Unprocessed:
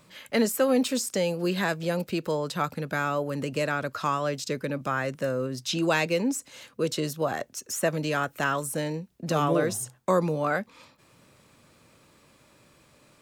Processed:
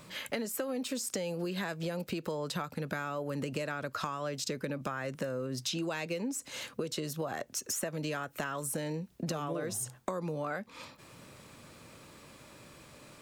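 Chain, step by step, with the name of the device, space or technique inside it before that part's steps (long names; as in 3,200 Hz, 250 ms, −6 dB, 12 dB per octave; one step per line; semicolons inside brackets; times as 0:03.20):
serial compression, peaks first (downward compressor, threshold −34 dBFS, peak gain reduction 15 dB; downward compressor 2.5 to 1, threshold −38 dBFS, peak gain reduction 6 dB)
level +5 dB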